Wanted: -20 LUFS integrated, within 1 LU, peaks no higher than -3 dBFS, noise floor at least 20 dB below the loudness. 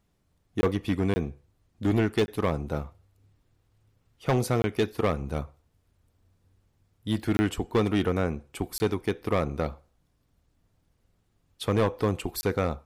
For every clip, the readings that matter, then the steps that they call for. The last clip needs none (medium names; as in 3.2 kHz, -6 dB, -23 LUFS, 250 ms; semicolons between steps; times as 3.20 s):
clipped samples 1.0%; clipping level -17.5 dBFS; dropouts 7; longest dropout 20 ms; loudness -28.5 LUFS; peak level -17.5 dBFS; loudness target -20.0 LUFS
-> clip repair -17.5 dBFS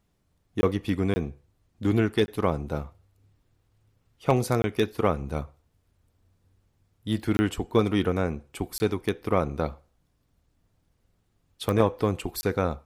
clipped samples 0.0%; dropouts 7; longest dropout 20 ms
-> interpolate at 0.61/1.14/2.26/4.62/7.37/8.78/12.41 s, 20 ms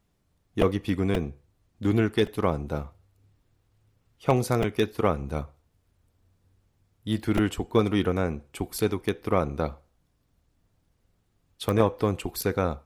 dropouts 0; loudness -27.0 LUFS; peak level -8.5 dBFS; loudness target -20.0 LUFS
-> trim +7 dB; peak limiter -3 dBFS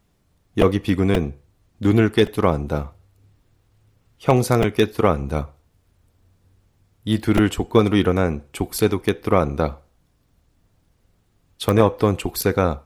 loudness -20.5 LUFS; peak level -3.0 dBFS; noise floor -64 dBFS